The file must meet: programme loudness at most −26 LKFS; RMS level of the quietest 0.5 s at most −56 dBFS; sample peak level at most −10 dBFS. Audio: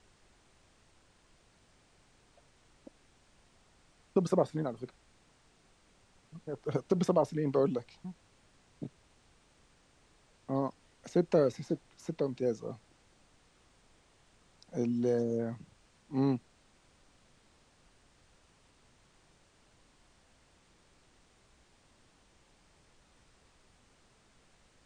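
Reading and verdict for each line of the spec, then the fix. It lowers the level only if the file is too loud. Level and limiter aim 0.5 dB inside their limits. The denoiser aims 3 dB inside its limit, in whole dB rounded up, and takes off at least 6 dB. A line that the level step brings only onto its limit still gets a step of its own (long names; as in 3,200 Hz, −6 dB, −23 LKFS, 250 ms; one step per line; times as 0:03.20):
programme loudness −33.0 LKFS: in spec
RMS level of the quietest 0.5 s −66 dBFS: in spec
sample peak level −14.5 dBFS: in spec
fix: no processing needed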